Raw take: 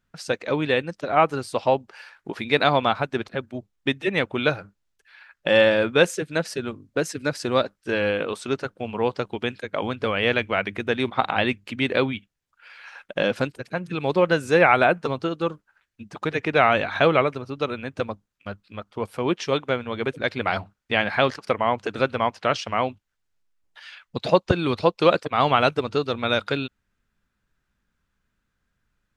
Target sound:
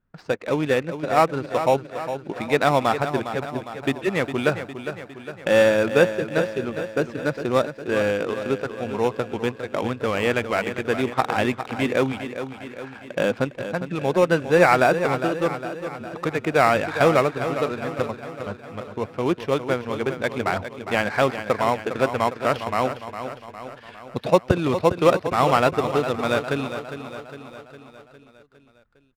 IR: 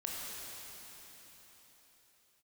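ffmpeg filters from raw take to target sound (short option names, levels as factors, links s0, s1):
-filter_complex "[0:a]acrossover=split=3000[s0][s1];[s1]acompressor=threshold=0.0112:ratio=4:attack=1:release=60[s2];[s0][s2]amix=inputs=2:normalize=0,asplit=2[s3][s4];[s4]acrusher=samples=14:mix=1:aa=0.000001,volume=0.299[s5];[s3][s5]amix=inputs=2:normalize=0,adynamicsmooth=sensitivity=6:basefreq=2000,aecho=1:1:407|814|1221|1628|2035|2442:0.316|0.177|0.0992|0.0555|0.0311|0.0174,volume=0.891"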